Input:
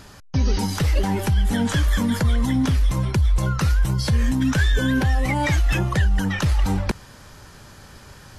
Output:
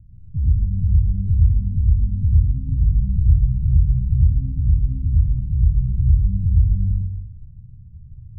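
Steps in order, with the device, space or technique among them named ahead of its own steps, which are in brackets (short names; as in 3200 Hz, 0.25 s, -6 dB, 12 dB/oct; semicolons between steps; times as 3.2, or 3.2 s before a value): 2.55–3.15 doubler 20 ms -3 dB; club heard from the street (limiter -15.5 dBFS, peak gain reduction 8 dB; LPF 130 Hz 24 dB/oct; reverb RT60 0.80 s, pre-delay 75 ms, DRR -5 dB); gain +2.5 dB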